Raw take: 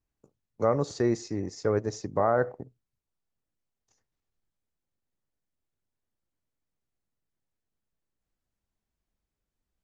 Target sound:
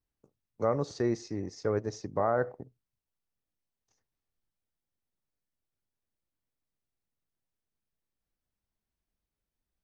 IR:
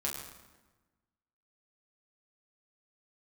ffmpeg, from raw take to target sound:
-af "bandreject=f=7100:w=7.6,volume=0.668"

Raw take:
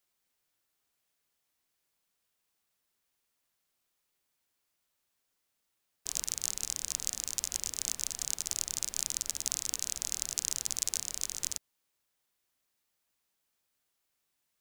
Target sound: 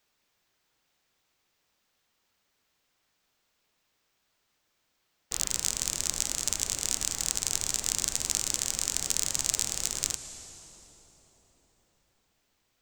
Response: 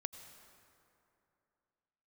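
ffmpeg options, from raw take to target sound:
-filter_complex "[0:a]equalizer=f=9300:t=o:w=0.67:g=-14,asetrate=50274,aresample=44100,asplit=2[s0][s1];[1:a]atrim=start_sample=2205,asetrate=24696,aresample=44100[s2];[s1][s2]afir=irnorm=-1:irlink=0,volume=2[s3];[s0][s3]amix=inputs=2:normalize=0"

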